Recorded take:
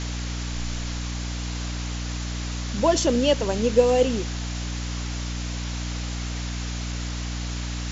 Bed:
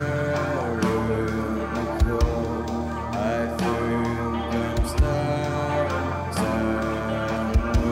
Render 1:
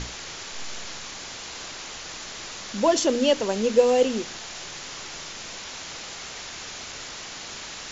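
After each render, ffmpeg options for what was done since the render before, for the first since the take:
-af "bandreject=f=60:t=h:w=6,bandreject=f=120:t=h:w=6,bandreject=f=180:t=h:w=6,bandreject=f=240:t=h:w=6,bandreject=f=300:t=h:w=6"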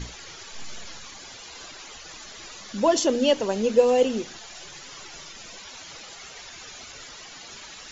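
-af "afftdn=nr=12:nf=-38"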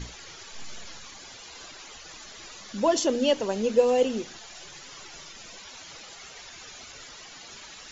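-af "volume=0.75"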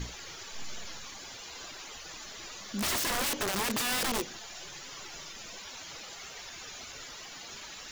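-af "acrusher=bits=9:mix=0:aa=0.000001,aeval=exprs='(mod(18.8*val(0)+1,2)-1)/18.8':c=same"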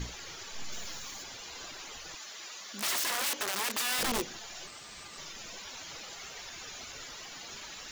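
-filter_complex "[0:a]asettb=1/sr,asplit=3[s0][s1][s2];[s0]atrim=end=0.724[s3];[s1]atrim=start=0.72:end=1.23,asetpts=PTS-STARTPTS,afade=t=in:d=0.004:c=qsin,afade=t=out:st=0.506:d=0.004:c=qsin,highshelf=f=9000:g=10.5[s4];[s2]atrim=start=1.226[s5];[s3][s4]acrossfade=d=0.004:c1=hsin:c2=qsin[s6];[s6][s5]acrossfade=d=0.004:c1=qsin:c2=hsin,asettb=1/sr,asplit=3[s7][s8][s9];[s7]atrim=end=2.154[s10];[s8]atrim=start=2.15:end=3.99,asetpts=PTS-STARTPTS,afade=t=in:d=0.004:c=qsin,afade=t=out:st=1.836:d=0.004:c=qsin,highpass=f=790:p=1[s11];[s9]atrim=start=3.986[s12];[s10][s11]acrossfade=d=0.004:c1=hsin:c2=qsin[s13];[s13][s12]acrossfade=d=0.004:c1=qsin:c2=hsin,asettb=1/sr,asplit=3[s14][s15][s16];[s14]atrim=end=4.674[s17];[s15]atrim=start=4.67:end=5.18,asetpts=PTS-STARTPTS,afade=t=in:d=0.004:c=qsin,afade=t=out:st=0.506:d=0.004:c=qsin,aeval=exprs='val(0)*sin(2*PI*1200*n/s)':c=same[s18];[s16]atrim=start=5.176[s19];[s17][s18]acrossfade=d=0.004:c1=hsin:c2=qsin[s20];[s20][s19]acrossfade=d=0.004:c1=qsin:c2=hsin"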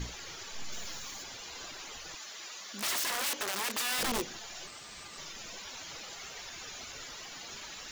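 -af "asoftclip=type=tanh:threshold=0.0668"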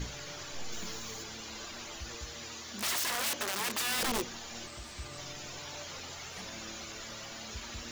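-filter_complex "[1:a]volume=0.0531[s0];[0:a][s0]amix=inputs=2:normalize=0"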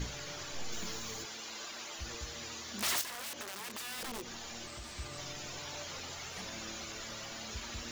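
-filter_complex "[0:a]asettb=1/sr,asplit=3[s0][s1][s2];[s0]atrim=end=1.254[s3];[s1]atrim=start=1.25:end=1.99,asetpts=PTS-STARTPTS,afade=t=in:d=0.004:c=qsin,afade=t=out:st=0.736:d=0.004:c=qsin,highpass=f=440:p=1[s4];[s2]atrim=start=1.986[s5];[s3][s4]acrossfade=d=0.004:c1=hsin:c2=qsin[s6];[s6][s5]acrossfade=d=0.004:c1=qsin:c2=hsin,asettb=1/sr,asplit=3[s7][s8][s9];[s7]atrim=end=3.014[s10];[s8]atrim=start=3.01:end=4.94,asetpts=PTS-STARTPTS,afade=t=in:d=0.004:c=qsin,afade=t=out:st=1.926:d=0.004:c=qsin,acompressor=threshold=0.01:ratio=5:attack=3.2:release=140:knee=1:detection=peak[s11];[s9]atrim=start=4.936[s12];[s10][s11]acrossfade=d=0.004:c1=hsin:c2=qsin[s13];[s13][s12]acrossfade=d=0.004:c1=qsin:c2=hsin"

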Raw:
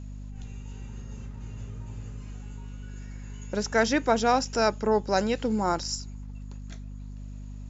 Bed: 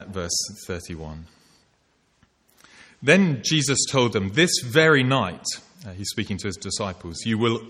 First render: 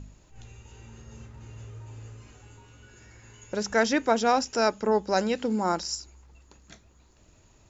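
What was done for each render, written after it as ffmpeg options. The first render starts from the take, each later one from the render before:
-af "bandreject=f=50:t=h:w=4,bandreject=f=100:t=h:w=4,bandreject=f=150:t=h:w=4,bandreject=f=200:t=h:w=4,bandreject=f=250:t=h:w=4"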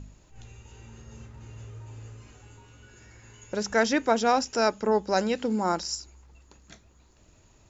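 -af anull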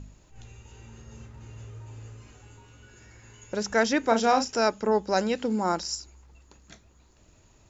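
-filter_complex "[0:a]asettb=1/sr,asplit=3[s0][s1][s2];[s0]atrim=end=4.004[s3];[s1]atrim=start=4:end=4.58,asetpts=PTS-STARTPTS,afade=t=in:d=0.004:c=qsin,afade=t=out:st=0.576:d=0.004:c=qsin,asplit=2[s4][s5];[s5]adelay=35,volume=0.422[s6];[s4][s6]amix=inputs=2:normalize=0,atrim=end_sample=25578[s7];[s2]atrim=start=4.576[s8];[s3][s7]acrossfade=d=0.004:c1=hsin:c2=qsin[s9];[s9][s8]acrossfade=d=0.004:c1=qsin:c2=hsin"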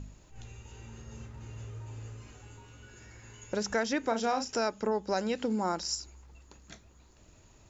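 -af "acompressor=threshold=0.0398:ratio=3"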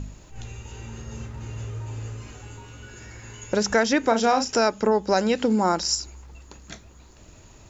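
-af "volume=2.99"

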